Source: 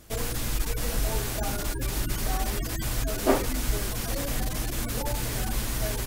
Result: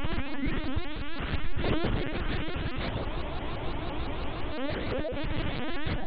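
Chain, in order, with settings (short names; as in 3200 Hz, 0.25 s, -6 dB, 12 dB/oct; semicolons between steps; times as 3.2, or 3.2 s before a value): Paulstretch 6.4×, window 0.05 s, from 3.47; LPC vocoder at 8 kHz pitch kept; spectral freeze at 3.07, 1.44 s; shaped vibrato saw up 5.9 Hz, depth 250 cents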